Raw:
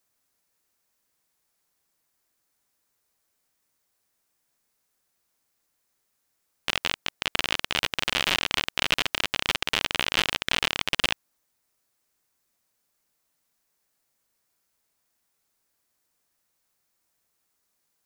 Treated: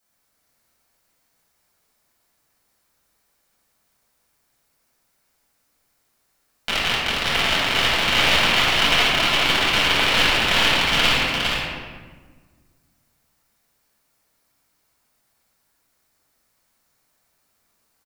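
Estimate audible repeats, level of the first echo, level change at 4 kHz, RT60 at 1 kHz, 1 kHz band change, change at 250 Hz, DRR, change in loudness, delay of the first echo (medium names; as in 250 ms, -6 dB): 1, -4.0 dB, +8.5 dB, 1.3 s, +10.5 dB, +10.5 dB, -9.5 dB, +8.5 dB, 408 ms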